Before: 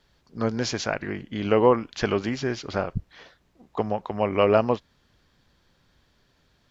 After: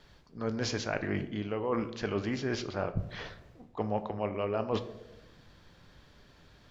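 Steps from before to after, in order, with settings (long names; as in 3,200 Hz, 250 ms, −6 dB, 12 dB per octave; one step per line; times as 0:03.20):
high-shelf EQ 5,900 Hz −6 dB
reversed playback
downward compressor 10 to 1, threshold −35 dBFS, peak gain reduction 22.5 dB
reversed playback
convolution reverb RT60 1.0 s, pre-delay 7 ms, DRR 9.5 dB
level +6 dB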